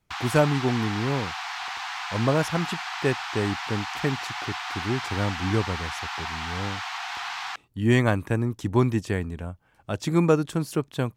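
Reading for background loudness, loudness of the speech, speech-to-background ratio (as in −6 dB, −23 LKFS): −32.0 LKFS, −26.5 LKFS, 5.5 dB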